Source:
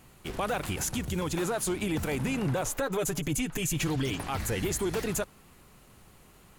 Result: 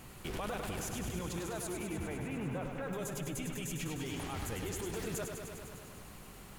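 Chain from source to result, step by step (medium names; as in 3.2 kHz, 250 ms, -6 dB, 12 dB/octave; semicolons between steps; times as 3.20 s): peak limiter -33 dBFS, peak gain reduction 11.5 dB; 1.67–2.93 s: low-pass 2.9 kHz 24 dB/octave; gain riding 0.5 s; bit-crushed delay 101 ms, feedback 80%, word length 11-bit, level -6 dB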